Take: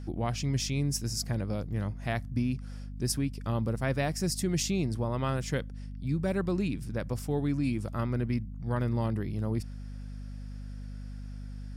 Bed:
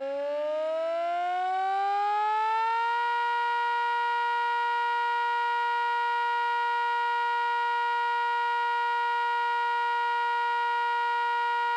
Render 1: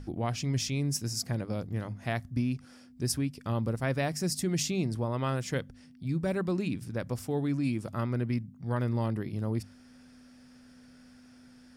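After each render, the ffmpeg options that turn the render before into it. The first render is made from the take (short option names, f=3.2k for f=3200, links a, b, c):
-af "bandreject=f=50:t=h:w=6,bandreject=f=100:t=h:w=6,bandreject=f=150:t=h:w=6,bandreject=f=200:t=h:w=6"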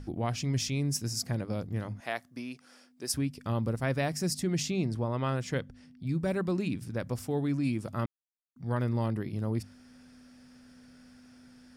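-filter_complex "[0:a]asettb=1/sr,asplit=3[a][b][c];[a]atrim=end=2.004[d];[b]atrim=start=2:end=3.14,asetpts=PTS-STARTPTS,afade=t=in:d=0.004:c=qsin,afade=t=out:st=1.136:d=0.004:c=qsin,highpass=410[e];[c]atrim=start=3.136[f];[d][e]acrossfade=d=0.004:c1=hsin:c2=qsin[g];[g][f]acrossfade=d=0.004:c1=qsin:c2=hsin,asettb=1/sr,asplit=3[h][i][j];[h]atrim=end=4.344[k];[i]atrim=start=4.34:end=6.07,asetpts=PTS-STARTPTS,afade=t=in:d=0.004:c=qsin,afade=t=out:st=1.726:d=0.004:c=qsin,highshelf=f=7.9k:g=-8.5[l];[j]atrim=start=6.066[m];[k][l]acrossfade=d=0.004:c1=hsin:c2=qsin[n];[n][m]acrossfade=d=0.004:c1=qsin:c2=hsin,asplit=3[o][p][q];[o]atrim=end=8.06,asetpts=PTS-STARTPTS,afade=t=out:st=8.056:d=0.004:c=hsin[r];[p]atrim=start=8.06:end=8.56,asetpts=PTS-STARTPTS,volume=0[s];[q]atrim=start=8.56,asetpts=PTS-STARTPTS,afade=t=in:d=0.004:c=hsin[t];[r][s][t]concat=n=3:v=0:a=1"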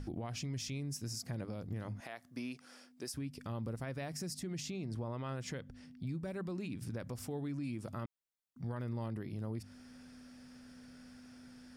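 -af "acompressor=threshold=-34dB:ratio=6,alimiter=level_in=8.5dB:limit=-24dB:level=0:latency=1:release=94,volume=-8.5dB"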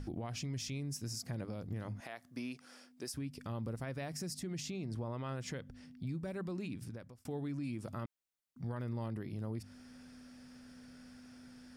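-filter_complex "[0:a]asplit=2[a][b];[a]atrim=end=7.25,asetpts=PTS-STARTPTS,afade=t=out:st=6.69:d=0.56[c];[b]atrim=start=7.25,asetpts=PTS-STARTPTS,afade=t=in:d=0.004:c=hsin[d];[c][d]concat=n=2:v=0:a=1"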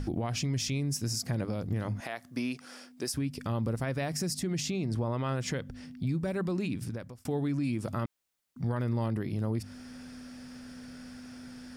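-af "volume=9dB"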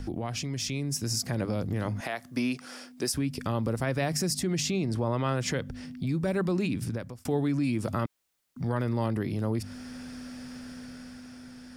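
-filter_complex "[0:a]acrossover=split=250|1100[a][b][c];[a]alimiter=level_in=7.5dB:limit=-24dB:level=0:latency=1,volume=-7.5dB[d];[d][b][c]amix=inputs=3:normalize=0,dynaudnorm=f=110:g=17:m=4.5dB"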